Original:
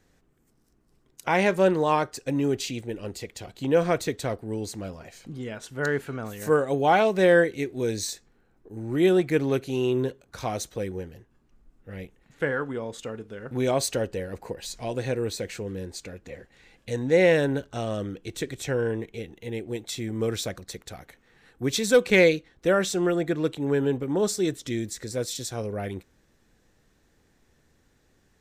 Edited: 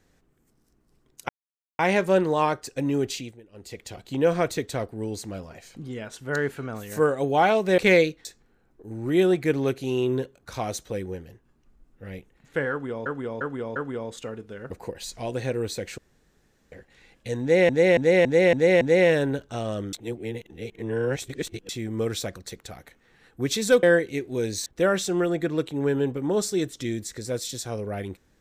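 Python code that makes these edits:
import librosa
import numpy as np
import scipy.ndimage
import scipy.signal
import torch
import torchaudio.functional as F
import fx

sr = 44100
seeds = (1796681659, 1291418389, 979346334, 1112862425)

y = fx.edit(x, sr, fx.insert_silence(at_s=1.29, length_s=0.5),
    fx.fade_down_up(start_s=2.62, length_s=0.69, db=-18.0, fade_s=0.29),
    fx.swap(start_s=7.28, length_s=0.83, other_s=22.05, other_length_s=0.47),
    fx.repeat(start_s=12.57, length_s=0.35, count=4),
    fx.cut(start_s=13.52, length_s=0.81),
    fx.room_tone_fill(start_s=15.6, length_s=0.74),
    fx.repeat(start_s=17.03, length_s=0.28, count=6),
    fx.reverse_span(start_s=18.15, length_s=1.76), tone=tone)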